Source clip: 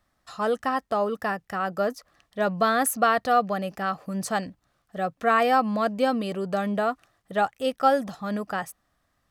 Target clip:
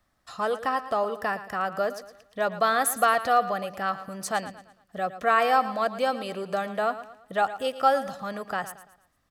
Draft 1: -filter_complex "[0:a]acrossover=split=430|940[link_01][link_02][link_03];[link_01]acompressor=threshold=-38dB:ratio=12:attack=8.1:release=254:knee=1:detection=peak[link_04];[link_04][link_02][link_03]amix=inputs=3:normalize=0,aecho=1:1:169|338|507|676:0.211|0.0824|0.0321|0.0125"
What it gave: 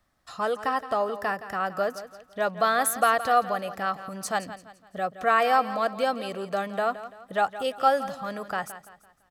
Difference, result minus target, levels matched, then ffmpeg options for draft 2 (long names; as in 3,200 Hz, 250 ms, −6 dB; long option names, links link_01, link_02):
echo 56 ms late
-filter_complex "[0:a]acrossover=split=430|940[link_01][link_02][link_03];[link_01]acompressor=threshold=-38dB:ratio=12:attack=8.1:release=254:knee=1:detection=peak[link_04];[link_04][link_02][link_03]amix=inputs=3:normalize=0,aecho=1:1:113|226|339|452:0.211|0.0824|0.0321|0.0125"